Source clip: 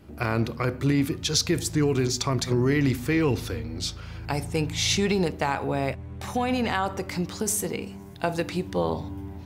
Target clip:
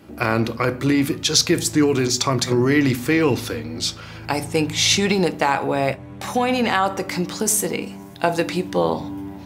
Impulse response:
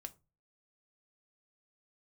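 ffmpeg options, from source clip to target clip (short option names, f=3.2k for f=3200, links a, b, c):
-filter_complex "[0:a]highpass=f=210:p=1,asplit=2[a][b];[1:a]atrim=start_sample=2205[c];[b][c]afir=irnorm=-1:irlink=0,volume=9.5dB[d];[a][d]amix=inputs=2:normalize=0,volume=-1dB"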